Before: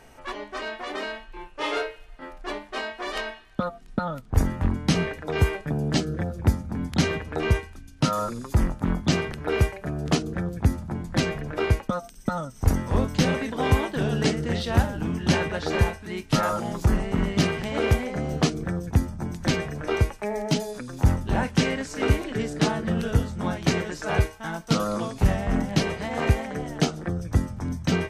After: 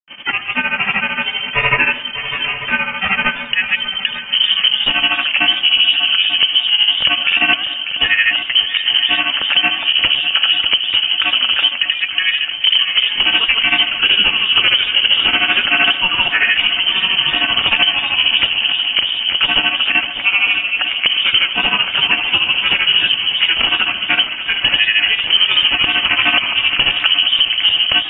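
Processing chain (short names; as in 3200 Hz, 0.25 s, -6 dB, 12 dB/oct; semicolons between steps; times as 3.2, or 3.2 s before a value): compressor 6:1, threshold -25 dBFS, peak gain reduction 12.5 dB; grains, grains 13/s, spray 0.1 s, pitch spread up and down by 0 st; multi-head echo 0.297 s, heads second and third, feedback 51%, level -14 dB; inverted band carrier 3100 Hz; maximiser +20.5 dB; warbling echo 99 ms, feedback 36%, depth 214 cents, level -15.5 dB; gain -1.5 dB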